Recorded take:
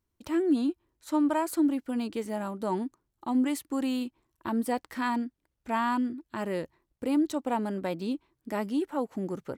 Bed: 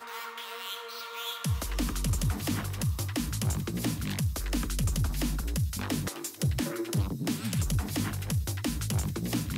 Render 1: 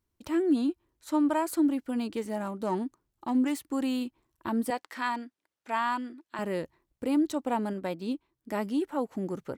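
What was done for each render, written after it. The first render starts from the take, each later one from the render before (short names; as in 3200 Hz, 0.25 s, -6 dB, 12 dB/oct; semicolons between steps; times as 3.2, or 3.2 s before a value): 2.17–3.63 self-modulated delay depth 0.059 ms; 4.7–6.39 weighting filter A; 7.73–8.5 upward expander, over -39 dBFS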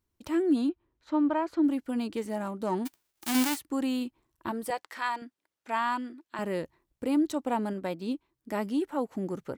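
0.69–1.64 air absorption 220 m; 2.85–3.55 spectral whitening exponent 0.1; 4.51–5.22 bell 250 Hz -14 dB 0.36 oct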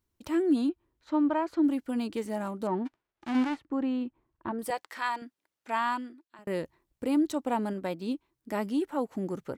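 2.67–4.59 Bessel low-pass 1600 Hz; 5.89–6.47 fade out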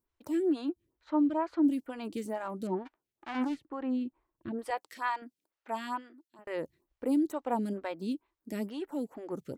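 photocell phaser 2.2 Hz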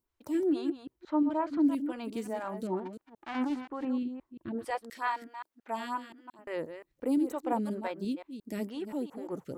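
reverse delay 0.175 s, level -9.5 dB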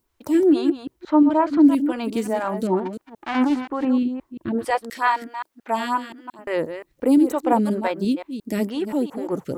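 gain +12 dB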